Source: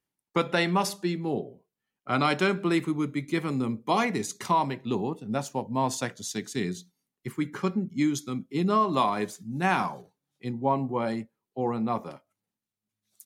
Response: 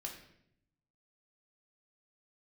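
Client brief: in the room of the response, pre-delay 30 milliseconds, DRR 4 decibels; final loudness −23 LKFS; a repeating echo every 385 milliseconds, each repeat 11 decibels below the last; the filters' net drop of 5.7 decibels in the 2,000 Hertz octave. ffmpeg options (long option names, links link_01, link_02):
-filter_complex "[0:a]equalizer=frequency=2000:width_type=o:gain=-7.5,aecho=1:1:385|770|1155:0.282|0.0789|0.0221,asplit=2[link_01][link_02];[1:a]atrim=start_sample=2205,adelay=30[link_03];[link_02][link_03]afir=irnorm=-1:irlink=0,volume=-2dB[link_04];[link_01][link_04]amix=inputs=2:normalize=0,volume=4.5dB"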